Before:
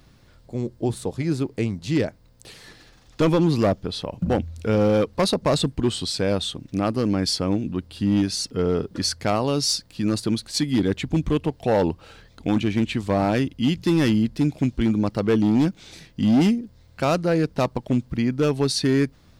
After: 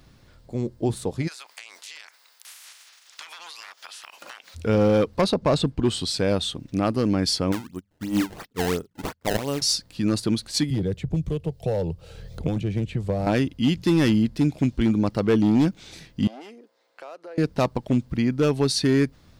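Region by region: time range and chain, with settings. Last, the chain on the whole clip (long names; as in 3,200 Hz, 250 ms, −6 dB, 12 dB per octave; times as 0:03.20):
0:01.27–0:04.54: ceiling on every frequency bin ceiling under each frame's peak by 26 dB + high-pass filter 1,300 Hz + downward compressor 12 to 1, threshold −37 dBFS
0:05.21–0:05.85: low-pass filter 3,800 Hz 6 dB per octave + notch filter 1,900 Hz
0:07.52–0:09.62: mains-hum notches 50/100/150/200 Hz + sample-and-hold swept by an LFO 22×, swing 160% 2.9 Hz + expander for the loud parts 2.5 to 1, over −37 dBFS
0:10.70–0:13.27: drawn EQ curve 170 Hz 0 dB, 250 Hz −16 dB, 490 Hz −2 dB, 1,000 Hz −15 dB, 1,800 Hz −14 dB, 11,000 Hz −7 dB + multiband upward and downward compressor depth 100%
0:16.27–0:17.38: high-pass filter 430 Hz 24 dB per octave + high-shelf EQ 2,700 Hz −9.5 dB + downward compressor 3 to 1, threshold −42 dBFS
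whole clip: no processing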